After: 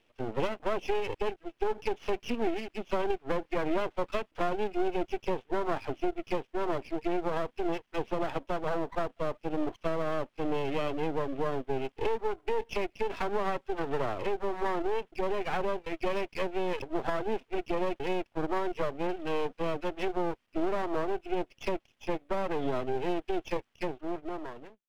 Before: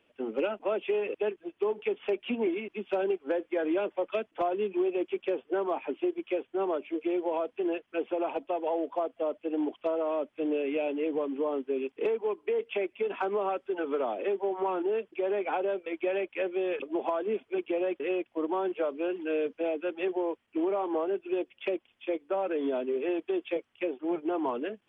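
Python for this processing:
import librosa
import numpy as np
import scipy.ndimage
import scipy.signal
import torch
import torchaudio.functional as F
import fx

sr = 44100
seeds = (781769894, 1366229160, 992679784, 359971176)

y = fx.fade_out_tail(x, sr, length_s=1.2)
y = np.maximum(y, 0.0)
y = F.gain(torch.from_numpy(y), 3.0).numpy()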